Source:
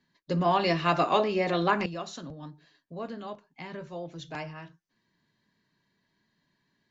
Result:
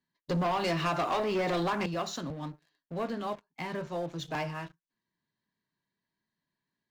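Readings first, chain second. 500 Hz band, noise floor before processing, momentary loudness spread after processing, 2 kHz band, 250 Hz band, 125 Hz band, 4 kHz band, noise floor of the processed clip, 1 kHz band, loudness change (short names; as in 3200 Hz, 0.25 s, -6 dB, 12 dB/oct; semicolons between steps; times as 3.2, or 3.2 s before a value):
-3.0 dB, -77 dBFS, 11 LU, -3.0 dB, -2.0 dB, -1.5 dB, -2.5 dB, under -85 dBFS, -4.0 dB, -4.5 dB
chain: bell 980 Hz +2.5 dB 0.98 oct; compressor 12:1, threshold -25 dBFS, peak gain reduction 8.5 dB; sample leveller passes 3; gain -7.5 dB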